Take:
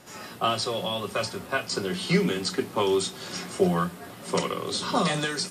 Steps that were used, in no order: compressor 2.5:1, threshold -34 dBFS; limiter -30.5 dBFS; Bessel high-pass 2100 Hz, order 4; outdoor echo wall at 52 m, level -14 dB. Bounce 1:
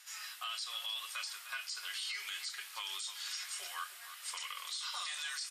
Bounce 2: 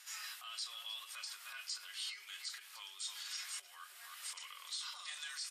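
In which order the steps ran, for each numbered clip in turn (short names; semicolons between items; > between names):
Bessel high-pass > compressor > outdoor echo > limiter; outdoor echo > compressor > limiter > Bessel high-pass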